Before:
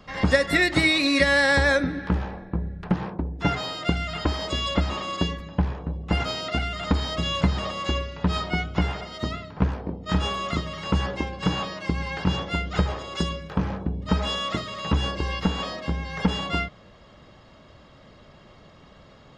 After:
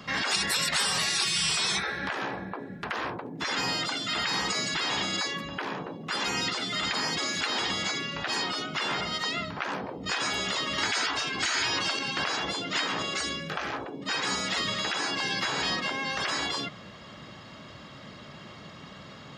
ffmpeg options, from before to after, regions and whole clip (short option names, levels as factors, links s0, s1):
-filter_complex "[0:a]asettb=1/sr,asplit=3[s0][s1][s2];[s0]atrim=end=10.784[s3];[s1]atrim=start=10.78:end=11.99,asetpts=PTS-STARTPTS,afade=t=in:d=0.004:c=qsin,afade=t=out:st=1.206:d=0.004:c=qsin,highpass=88,acontrast=35[s4];[s2]atrim=start=11.986[s5];[s3][s4]acrossfade=d=0.004:c1=hsin:c2=qsin[s6];[s6][s5]acrossfade=d=0.004:c1=qsin:c2=hsin,asettb=1/sr,asplit=3[s7][s8][s9];[s7]atrim=end=13.024[s10];[s8]atrim=start=13.02:end=13.73,asetpts=PTS-STARTPTS,afade=t=in:d=0.004:c=qsin,afade=t=out:st=0.706:d=0.004:c=qsin,highpass=140,equalizer=f=960:w=6.2:g=-15[s11];[s9]atrim=start=13.726[s12];[s10][s11]acrossfade=d=0.004:c1=hsin:c2=qsin[s13];[s13][s12]acrossfade=d=0.004:c1=qsin:c2=hsin,afftfilt=real='re*lt(hypot(re,im),0.0891)':imag='im*lt(hypot(re,im),0.0891)':win_size=1024:overlap=0.75,highpass=140,equalizer=f=530:t=o:w=1.8:g=-7,volume=2.82"